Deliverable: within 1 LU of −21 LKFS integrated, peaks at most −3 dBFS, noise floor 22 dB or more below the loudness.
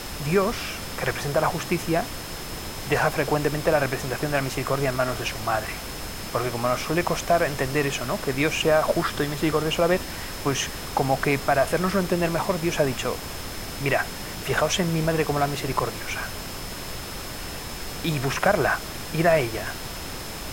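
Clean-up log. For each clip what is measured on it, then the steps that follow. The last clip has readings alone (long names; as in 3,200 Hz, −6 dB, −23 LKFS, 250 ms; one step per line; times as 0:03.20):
interfering tone 5,200 Hz; level of the tone −43 dBFS; background noise floor −35 dBFS; target noise floor −47 dBFS; integrated loudness −25.0 LKFS; sample peak −7.5 dBFS; target loudness −21.0 LKFS
→ notch filter 5,200 Hz, Q 30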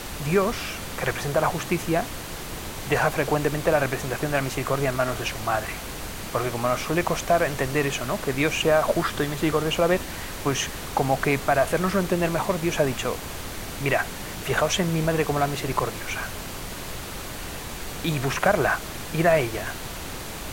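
interfering tone none found; background noise floor −35 dBFS; target noise floor −48 dBFS
→ noise reduction from a noise print 13 dB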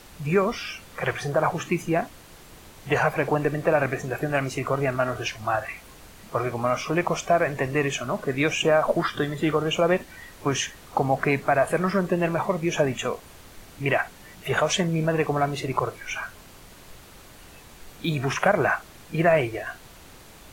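background noise floor −48 dBFS; integrated loudness −25.0 LKFS; sample peak −8.0 dBFS; target loudness −21.0 LKFS
→ level +4 dB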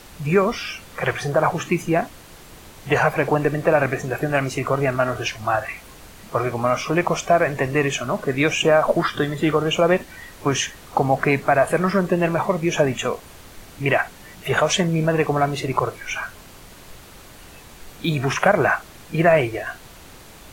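integrated loudness −21.0 LKFS; sample peak −4.0 dBFS; background noise floor −44 dBFS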